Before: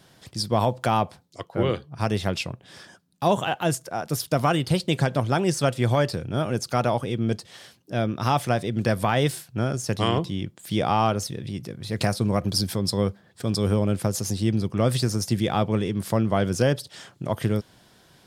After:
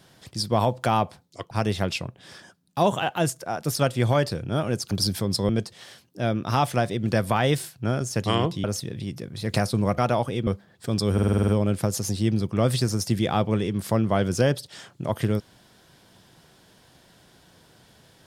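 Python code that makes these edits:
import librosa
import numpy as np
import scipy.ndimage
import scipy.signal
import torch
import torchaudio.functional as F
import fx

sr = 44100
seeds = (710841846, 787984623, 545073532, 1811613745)

y = fx.edit(x, sr, fx.cut(start_s=1.51, length_s=0.45),
    fx.cut(start_s=4.21, length_s=1.37),
    fx.swap(start_s=6.73, length_s=0.49, other_s=12.45, other_length_s=0.58),
    fx.cut(start_s=10.37, length_s=0.74),
    fx.stutter(start_s=13.69, slice_s=0.05, count=8), tone=tone)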